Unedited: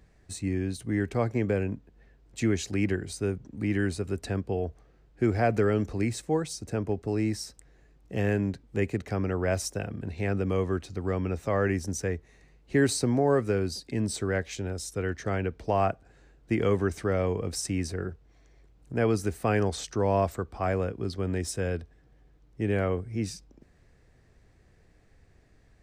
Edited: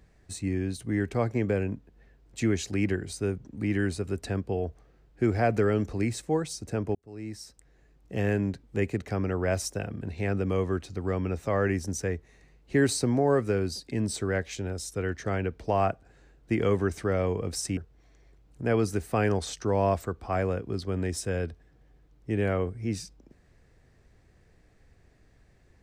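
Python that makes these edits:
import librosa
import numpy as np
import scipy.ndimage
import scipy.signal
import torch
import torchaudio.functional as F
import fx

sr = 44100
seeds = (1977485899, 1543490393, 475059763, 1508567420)

y = fx.edit(x, sr, fx.fade_in_span(start_s=6.95, length_s=1.53, curve='qsin'),
    fx.cut(start_s=17.77, length_s=0.31), tone=tone)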